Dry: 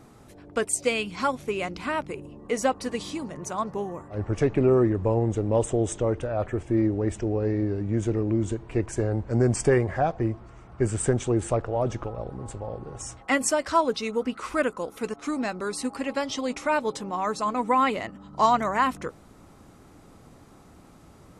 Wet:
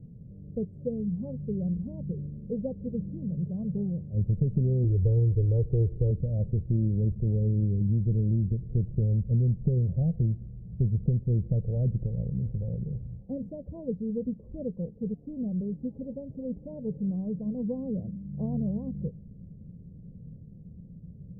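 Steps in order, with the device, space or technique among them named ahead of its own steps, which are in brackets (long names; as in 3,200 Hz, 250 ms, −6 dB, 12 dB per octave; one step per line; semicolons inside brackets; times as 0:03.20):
elliptic low-pass filter 510 Hz, stop band 60 dB
jukebox (low-pass filter 5,500 Hz; low shelf with overshoot 230 Hz +9.5 dB, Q 3; downward compressor 5 to 1, threshold −18 dBFS, peak gain reduction 8.5 dB)
0:04.84–0:06.11: comb filter 2.4 ms, depth 85%
level −4 dB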